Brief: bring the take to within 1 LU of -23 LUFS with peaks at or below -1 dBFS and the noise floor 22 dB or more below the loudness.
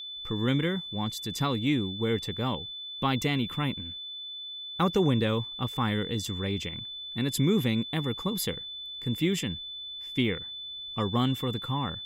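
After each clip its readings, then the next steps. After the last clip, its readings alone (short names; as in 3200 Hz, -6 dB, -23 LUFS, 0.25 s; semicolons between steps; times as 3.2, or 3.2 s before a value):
steady tone 3500 Hz; tone level -37 dBFS; loudness -29.5 LUFS; peak -13.0 dBFS; loudness target -23.0 LUFS
-> notch 3500 Hz, Q 30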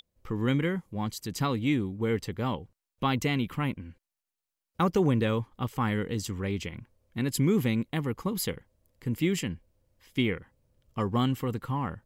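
steady tone none; loudness -30.0 LUFS; peak -13.0 dBFS; loudness target -23.0 LUFS
-> gain +7 dB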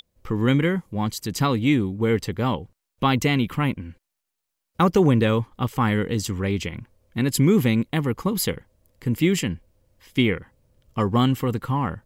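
loudness -23.0 LUFS; peak -6.0 dBFS; noise floor -81 dBFS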